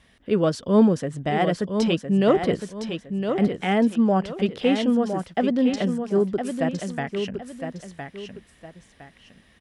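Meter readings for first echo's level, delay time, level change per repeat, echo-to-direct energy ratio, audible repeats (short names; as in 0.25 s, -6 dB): -7.0 dB, 1.011 s, -10.0 dB, -6.5 dB, 2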